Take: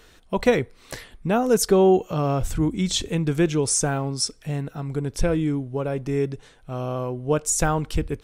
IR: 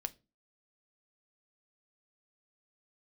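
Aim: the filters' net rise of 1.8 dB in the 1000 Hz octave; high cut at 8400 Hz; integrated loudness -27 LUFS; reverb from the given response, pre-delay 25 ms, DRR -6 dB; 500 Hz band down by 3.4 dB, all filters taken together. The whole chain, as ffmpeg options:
-filter_complex "[0:a]lowpass=8.4k,equalizer=f=500:t=o:g=-5.5,equalizer=f=1k:t=o:g=5,asplit=2[a][b];[1:a]atrim=start_sample=2205,adelay=25[c];[b][c]afir=irnorm=-1:irlink=0,volume=7dB[d];[a][d]amix=inputs=2:normalize=0,volume=-9dB"

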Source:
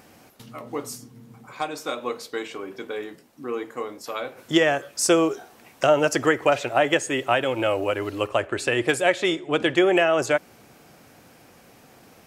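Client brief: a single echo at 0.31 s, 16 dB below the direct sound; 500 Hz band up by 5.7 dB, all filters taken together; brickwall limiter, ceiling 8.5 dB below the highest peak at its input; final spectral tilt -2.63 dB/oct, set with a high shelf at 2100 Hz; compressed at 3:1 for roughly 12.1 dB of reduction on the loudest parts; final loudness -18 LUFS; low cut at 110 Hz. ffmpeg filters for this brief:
-af "highpass=110,equalizer=f=500:t=o:g=6.5,highshelf=f=2.1k:g=7.5,acompressor=threshold=-26dB:ratio=3,alimiter=limit=-17dB:level=0:latency=1,aecho=1:1:310:0.158,volume=11.5dB"

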